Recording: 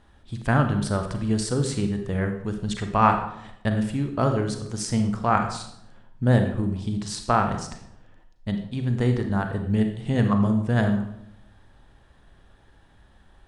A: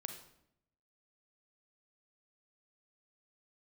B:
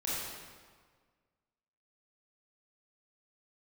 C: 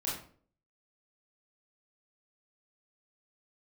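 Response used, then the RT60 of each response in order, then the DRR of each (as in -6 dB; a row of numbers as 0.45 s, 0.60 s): A; 0.75 s, 1.6 s, 0.50 s; 5.5 dB, -8.0 dB, -7.0 dB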